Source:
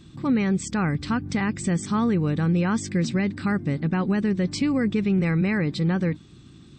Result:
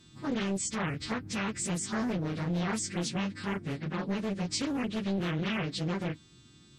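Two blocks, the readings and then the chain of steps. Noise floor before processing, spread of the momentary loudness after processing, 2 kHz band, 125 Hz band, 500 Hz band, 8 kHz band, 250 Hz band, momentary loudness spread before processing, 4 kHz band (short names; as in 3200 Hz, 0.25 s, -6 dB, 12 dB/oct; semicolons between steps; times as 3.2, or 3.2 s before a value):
-49 dBFS, 4 LU, -6.5 dB, -10.5 dB, -7.5 dB, +1.0 dB, -10.0 dB, 4 LU, 0.0 dB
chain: frequency quantiser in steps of 2 st; Doppler distortion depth 0.78 ms; gain -8 dB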